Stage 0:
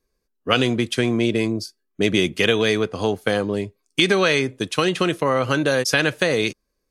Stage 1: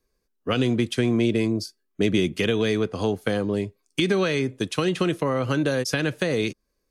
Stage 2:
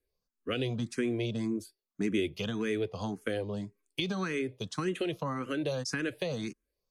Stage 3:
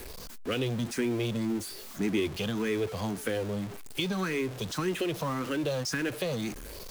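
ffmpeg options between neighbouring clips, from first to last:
-filter_complex "[0:a]acrossover=split=390[s0][s1];[s1]acompressor=threshold=0.0282:ratio=2[s2];[s0][s2]amix=inputs=2:normalize=0"
-filter_complex "[0:a]asplit=2[s0][s1];[s1]afreqshift=1.8[s2];[s0][s2]amix=inputs=2:normalize=1,volume=0.473"
-af "aeval=exprs='val(0)+0.5*0.0168*sgn(val(0))':c=same"

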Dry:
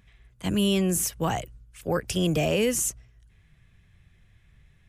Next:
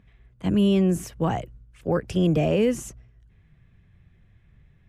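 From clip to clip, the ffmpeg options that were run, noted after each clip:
-af "lowpass=f=1800:p=1,equalizer=f=230:w=0.46:g=4.5"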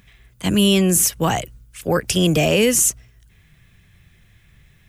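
-af "crystalizer=i=9:c=0,volume=1.41"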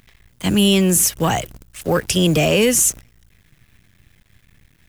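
-filter_complex "[0:a]asplit=2[s0][s1];[s1]asoftclip=type=hard:threshold=0.15,volume=0.355[s2];[s0][s2]amix=inputs=2:normalize=0,acrusher=bits=7:dc=4:mix=0:aa=0.000001,volume=0.891"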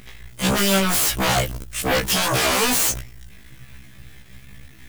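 -filter_complex "[0:a]asplit=2[s0][s1];[s1]aeval=exprs='0.562*sin(PI/2*7.08*val(0)/0.562)':c=same,volume=0.631[s2];[s0][s2]amix=inputs=2:normalize=0,afftfilt=real='re*1.73*eq(mod(b,3),0)':imag='im*1.73*eq(mod(b,3),0)':win_size=2048:overlap=0.75,volume=0.501"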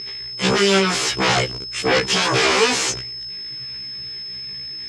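-af "aeval=exprs='val(0)+0.0282*sin(2*PI*5200*n/s)':c=same,highpass=120,equalizer=f=230:t=q:w=4:g=-7,equalizer=f=410:t=q:w=4:g=9,equalizer=f=620:t=q:w=4:g=-6,equalizer=f=2200:t=q:w=4:g=3,lowpass=f=6900:w=0.5412,lowpass=f=6900:w=1.3066,volume=1.33"

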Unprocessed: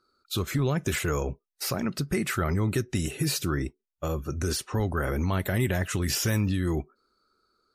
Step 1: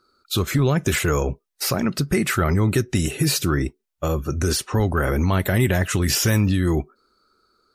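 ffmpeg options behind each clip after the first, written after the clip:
-af "acontrast=84"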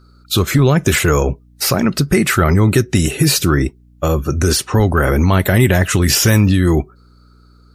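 -af "aeval=exprs='val(0)+0.00224*(sin(2*PI*60*n/s)+sin(2*PI*2*60*n/s)/2+sin(2*PI*3*60*n/s)/3+sin(2*PI*4*60*n/s)/4+sin(2*PI*5*60*n/s)/5)':c=same,volume=2.24"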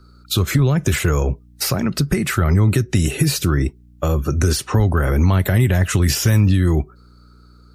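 -filter_complex "[0:a]acrossover=split=150[s0][s1];[s1]acompressor=threshold=0.112:ratio=6[s2];[s0][s2]amix=inputs=2:normalize=0"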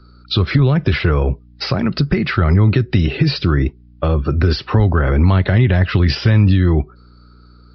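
-af "aresample=11025,aresample=44100,volume=1.33"

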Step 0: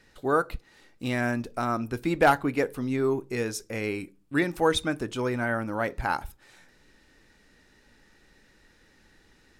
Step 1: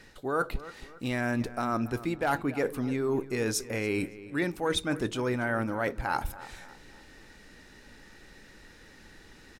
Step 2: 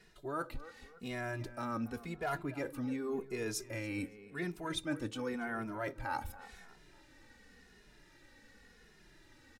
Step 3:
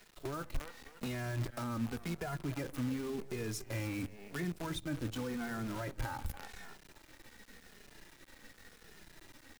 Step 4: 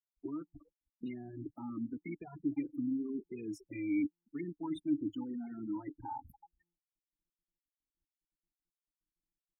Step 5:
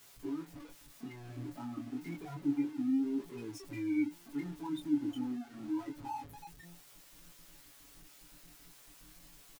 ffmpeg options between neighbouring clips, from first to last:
-filter_complex "[0:a]areverse,acompressor=threshold=0.02:ratio=5,areverse,asplit=2[s0][s1];[s1]adelay=281,lowpass=f=3400:p=1,volume=0.158,asplit=2[s2][s3];[s3]adelay=281,lowpass=f=3400:p=1,volume=0.42,asplit=2[s4][s5];[s5]adelay=281,lowpass=f=3400:p=1,volume=0.42,asplit=2[s6][s7];[s7]adelay=281,lowpass=f=3400:p=1,volume=0.42[s8];[s0][s2][s4][s6][s8]amix=inputs=5:normalize=0,volume=2.24"
-filter_complex "[0:a]asplit=2[s0][s1];[s1]adelay=2.4,afreqshift=-0.9[s2];[s0][s2]amix=inputs=2:normalize=1,volume=0.531"
-filter_complex "[0:a]bandreject=f=50:t=h:w=6,bandreject=f=100:t=h:w=6,acrusher=bits=8:dc=4:mix=0:aa=0.000001,acrossover=split=190[s0][s1];[s1]acompressor=threshold=0.00447:ratio=6[s2];[s0][s2]amix=inputs=2:normalize=0,volume=2.24"
-filter_complex "[0:a]aemphasis=mode=production:type=50fm,afftfilt=real='re*gte(hypot(re,im),0.0251)':imag='im*gte(hypot(re,im),0.0251)':win_size=1024:overlap=0.75,asplit=3[s0][s1][s2];[s0]bandpass=f=300:t=q:w=8,volume=1[s3];[s1]bandpass=f=870:t=q:w=8,volume=0.501[s4];[s2]bandpass=f=2240:t=q:w=8,volume=0.355[s5];[s3][s4][s5]amix=inputs=3:normalize=0,volume=3.35"
-af "aeval=exprs='val(0)+0.5*0.00562*sgn(val(0))':c=same,flanger=delay=17.5:depth=6.5:speed=0.29,aecho=1:1:7.1:0.65"

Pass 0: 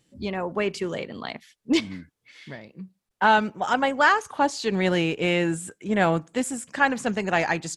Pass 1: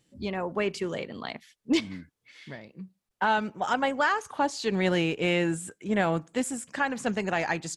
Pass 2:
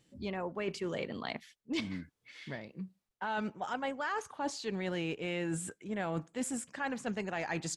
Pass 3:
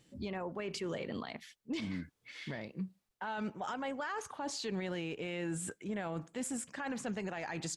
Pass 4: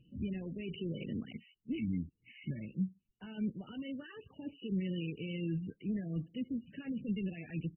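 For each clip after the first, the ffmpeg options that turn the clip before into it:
-af "alimiter=limit=0.266:level=0:latency=1:release=205,volume=0.75"
-af "highshelf=f=8400:g=-4.5,areverse,acompressor=threshold=0.0224:ratio=6,areverse"
-af "alimiter=level_in=2.82:limit=0.0631:level=0:latency=1:release=59,volume=0.355,volume=1.41"
-af "firequalizer=gain_entry='entry(180,0);entry(830,-29);entry(3900,8);entry(7900,-6)':delay=0.05:min_phase=1,volume=2" -ar 24000 -c:a libmp3lame -b:a 8k

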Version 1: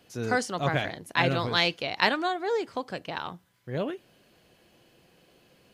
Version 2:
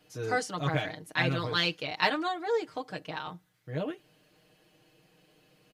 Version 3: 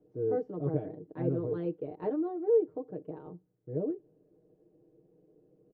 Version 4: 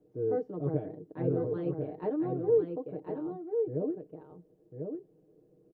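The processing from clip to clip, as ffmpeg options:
-af "aecho=1:1:6.5:0.96,volume=0.501"
-af "lowpass=f=410:t=q:w=3.6,volume=0.668"
-af "aecho=1:1:1045:0.531"

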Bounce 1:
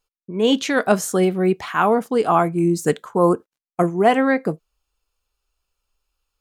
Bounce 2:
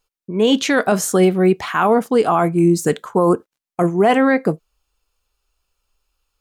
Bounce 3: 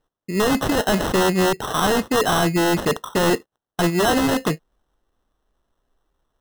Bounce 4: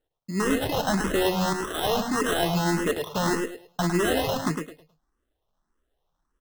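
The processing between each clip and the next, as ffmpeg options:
-af "alimiter=limit=0.299:level=0:latency=1:release=25,volume=1.68"
-af "acrusher=samples=19:mix=1:aa=0.000001,aeval=exprs='0.237*(abs(mod(val(0)/0.237+3,4)-2)-1)':c=same"
-filter_complex "[0:a]asplit=2[s0][s1];[s1]aecho=0:1:106|212|318|424:0.531|0.143|0.0387|0.0104[s2];[s0][s2]amix=inputs=2:normalize=0,asplit=2[s3][s4];[s4]afreqshift=1.7[s5];[s3][s5]amix=inputs=2:normalize=1,volume=0.668"

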